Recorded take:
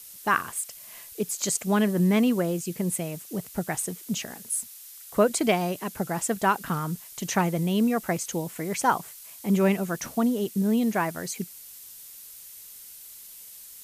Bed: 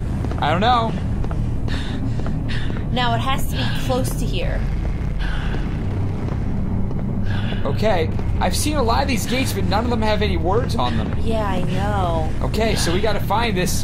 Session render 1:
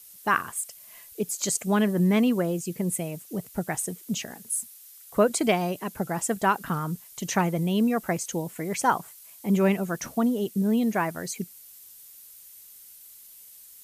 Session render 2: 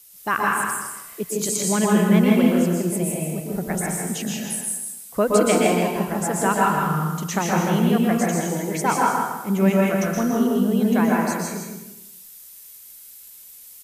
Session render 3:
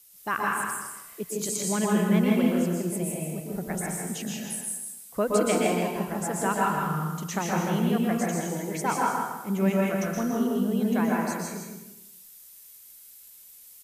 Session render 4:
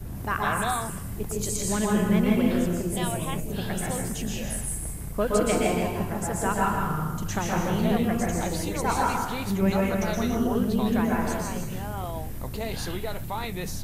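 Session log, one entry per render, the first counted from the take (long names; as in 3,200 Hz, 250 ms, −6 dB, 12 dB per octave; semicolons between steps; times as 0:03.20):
broadband denoise 6 dB, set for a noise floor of −46 dBFS
on a send: repeating echo 161 ms, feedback 26%, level −5.5 dB; on the sum: dense smooth reverb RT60 0.87 s, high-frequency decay 0.75×, pre-delay 110 ms, DRR −2.5 dB
level −6 dB
mix in bed −13 dB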